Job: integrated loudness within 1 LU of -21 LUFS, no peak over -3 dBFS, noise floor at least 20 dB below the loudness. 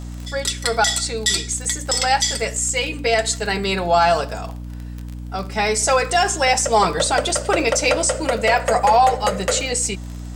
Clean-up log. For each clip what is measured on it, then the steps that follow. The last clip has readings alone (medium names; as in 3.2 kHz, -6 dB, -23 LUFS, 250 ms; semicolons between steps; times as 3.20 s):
tick rate 27 per s; hum 60 Hz; highest harmonic 300 Hz; hum level -29 dBFS; loudness -18.5 LUFS; peak level -5.0 dBFS; loudness target -21.0 LUFS
-> de-click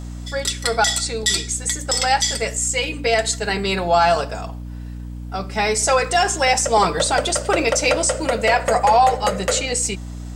tick rate 0 per s; hum 60 Hz; highest harmonic 300 Hz; hum level -29 dBFS
-> hum notches 60/120/180/240/300 Hz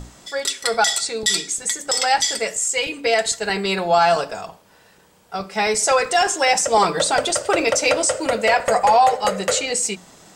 hum not found; loudness -18.5 LUFS; peak level -5.0 dBFS; loudness target -21.0 LUFS
-> trim -2.5 dB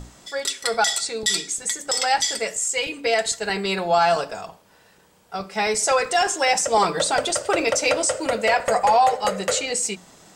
loudness -21.0 LUFS; peak level -7.5 dBFS; noise floor -55 dBFS